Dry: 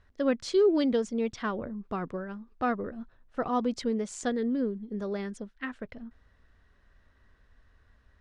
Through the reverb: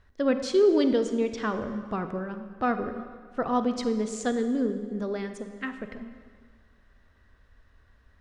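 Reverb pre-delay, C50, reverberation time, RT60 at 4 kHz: 30 ms, 9.0 dB, 1.8 s, 1.4 s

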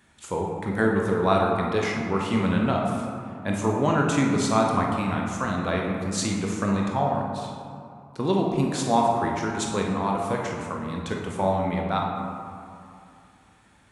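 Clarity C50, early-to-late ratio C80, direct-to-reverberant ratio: 1.0 dB, 3.0 dB, -1.0 dB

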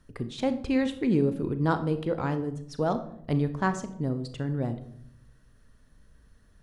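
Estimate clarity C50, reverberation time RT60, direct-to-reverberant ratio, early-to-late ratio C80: 12.5 dB, 0.70 s, 9.5 dB, 15.5 dB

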